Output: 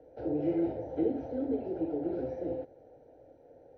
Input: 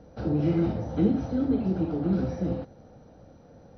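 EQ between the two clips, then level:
three-way crossover with the lows and the highs turned down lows −14 dB, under 180 Hz, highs −21 dB, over 2,100 Hz
phaser with its sweep stopped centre 480 Hz, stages 4
0.0 dB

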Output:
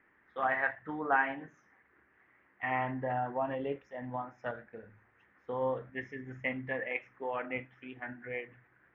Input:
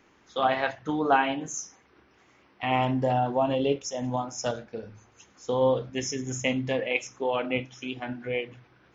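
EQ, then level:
dynamic equaliser 1,000 Hz, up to +3 dB, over −35 dBFS, Q 0.93
transistor ladder low-pass 2,000 Hz, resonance 70%
0.0 dB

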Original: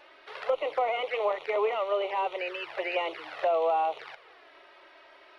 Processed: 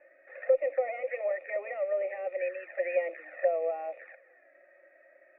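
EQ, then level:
dynamic equaliser 3,000 Hz, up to +7 dB, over −50 dBFS, Q 1
formant resonators in series e
phaser with its sweep stopped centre 650 Hz, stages 8
+8.0 dB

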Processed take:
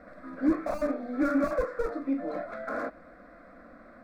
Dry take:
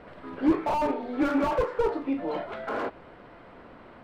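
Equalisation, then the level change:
phaser with its sweep stopped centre 600 Hz, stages 8
0.0 dB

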